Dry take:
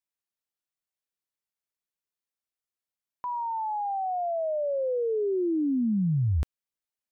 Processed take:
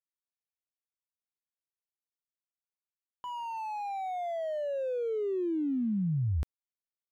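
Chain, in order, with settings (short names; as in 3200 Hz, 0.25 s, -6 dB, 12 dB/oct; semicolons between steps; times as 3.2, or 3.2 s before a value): median filter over 25 samples; gain -4.5 dB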